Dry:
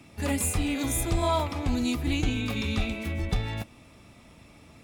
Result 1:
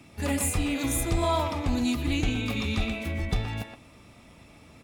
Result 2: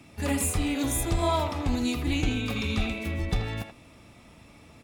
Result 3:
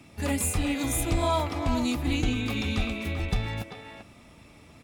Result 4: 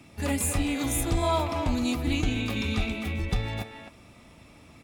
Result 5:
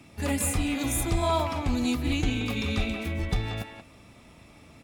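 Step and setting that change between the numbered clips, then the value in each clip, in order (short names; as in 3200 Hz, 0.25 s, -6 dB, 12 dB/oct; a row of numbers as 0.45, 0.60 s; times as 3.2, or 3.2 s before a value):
speakerphone echo, time: 120, 80, 390, 260, 180 ms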